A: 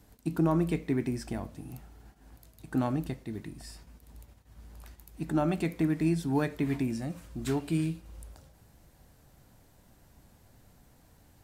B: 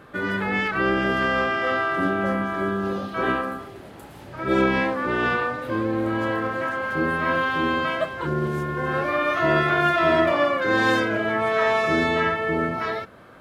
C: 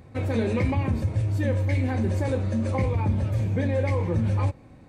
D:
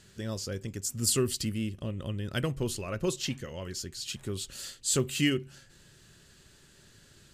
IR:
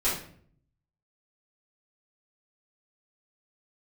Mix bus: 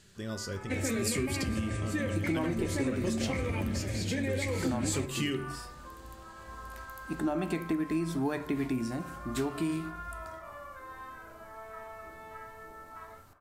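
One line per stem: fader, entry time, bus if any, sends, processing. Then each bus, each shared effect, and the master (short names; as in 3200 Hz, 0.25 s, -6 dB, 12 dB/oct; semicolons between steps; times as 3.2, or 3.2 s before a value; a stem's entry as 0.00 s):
+1.0 dB, 1.90 s, send -22 dB, bell 150 Hz -14 dB 0.21 oct
-14.0 dB, 0.15 s, send -14 dB, compressor 2.5:1, threshold -29 dBFS, peak gain reduction 9.5 dB; band-pass 1100 Hz, Q 1.9
-2.0 dB, 0.55 s, no send, graphic EQ 125/250/1000/2000/8000 Hz -12/+5/-10/+9/+10 dB; limiter -19.5 dBFS, peak gain reduction 5.5 dB
-3.0 dB, 0.00 s, send -19 dB, dry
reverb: on, RT60 0.55 s, pre-delay 3 ms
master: compressor, threshold -27 dBFS, peak gain reduction 7.5 dB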